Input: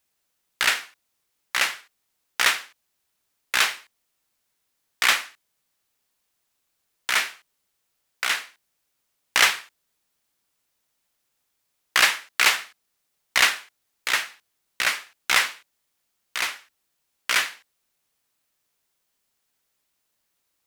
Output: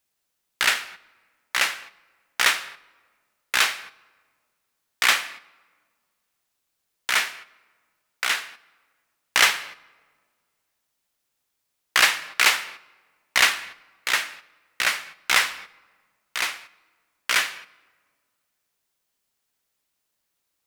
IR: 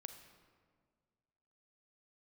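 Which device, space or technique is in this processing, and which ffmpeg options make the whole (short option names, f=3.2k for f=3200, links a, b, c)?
keyed gated reverb: -filter_complex "[0:a]asplit=3[a][b][c];[1:a]atrim=start_sample=2205[d];[b][d]afir=irnorm=-1:irlink=0[e];[c]apad=whole_len=911542[f];[e][f]sidechaingate=range=-8dB:threshold=-46dB:ratio=16:detection=peak,volume=3.5dB[g];[a][g]amix=inputs=2:normalize=0,volume=-4.5dB"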